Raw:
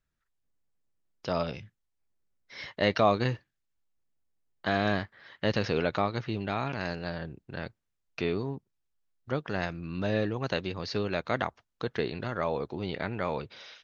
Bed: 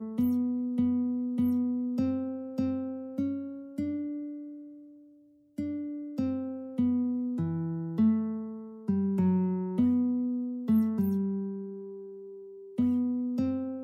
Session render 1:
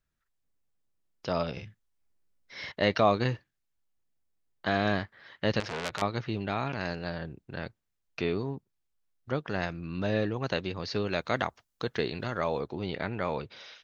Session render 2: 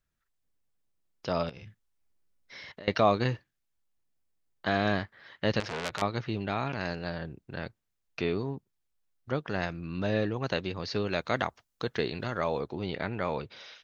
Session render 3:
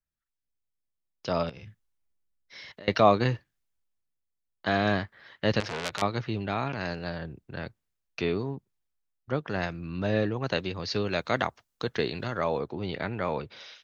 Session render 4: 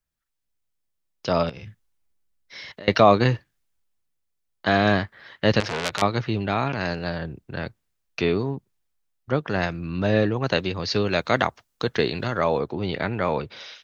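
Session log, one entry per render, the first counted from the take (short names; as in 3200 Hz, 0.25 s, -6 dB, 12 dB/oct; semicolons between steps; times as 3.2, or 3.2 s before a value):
1.52–2.72 doubler 47 ms -3 dB; 5.6–6.02 core saturation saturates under 3900 Hz; 11.07–12.61 high shelf 5200 Hz +10 dB
1.49–2.88 compressor 12:1, threshold -41 dBFS
in parallel at -2.5 dB: compressor, threshold -37 dBFS, peak gain reduction 18 dB; on the sum: three-band expander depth 40%
gain +6 dB; limiter -2 dBFS, peak gain reduction 2.5 dB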